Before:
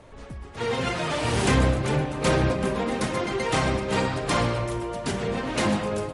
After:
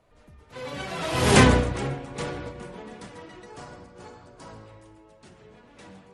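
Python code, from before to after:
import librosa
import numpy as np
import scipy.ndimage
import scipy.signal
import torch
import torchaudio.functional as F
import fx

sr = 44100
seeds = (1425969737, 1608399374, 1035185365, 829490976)

y = fx.doppler_pass(x, sr, speed_mps=28, closest_m=3.4, pass_at_s=1.38)
y = fx.hum_notches(y, sr, base_hz=60, count=6)
y = fx.spec_box(y, sr, start_s=3.44, length_s=1.22, low_hz=1700.0, high_hz=4200.0, gain_db=-6)
y = y * librosa.db_to_amplitude(7.0)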